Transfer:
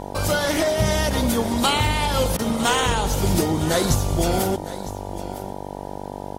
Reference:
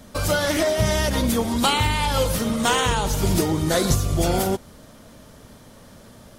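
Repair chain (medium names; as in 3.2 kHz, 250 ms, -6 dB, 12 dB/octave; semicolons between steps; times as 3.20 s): de-click; de-hum 48.7 Hz, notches 20; interpolate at 2.37 s, 18 ms; inverse comb 957 ms -15.5 dB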